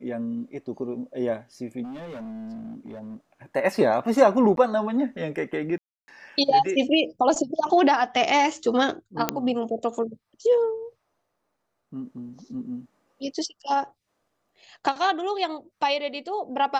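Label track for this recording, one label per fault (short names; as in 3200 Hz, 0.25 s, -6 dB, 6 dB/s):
1.830000	3.160000	clipped -34 dBFS
4.560000	4.570000	gap 12 ms
5.780000	6.080000	gap 0.3 s
9.290000	9.290000	pop -5 dBFS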